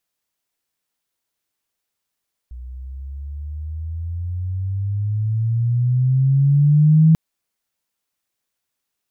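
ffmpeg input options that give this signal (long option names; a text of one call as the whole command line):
ffmpeg -f lavfi -i "aevalsrc='pow(10,(-8+23*(t/4.64-1))/20)*sin(2*PI*60.6*4.64/(17*log(2)/12)*(exp(17*log(2)/12*t/4.64)-1))':duration=4.64:sample_rate=44100" out.wav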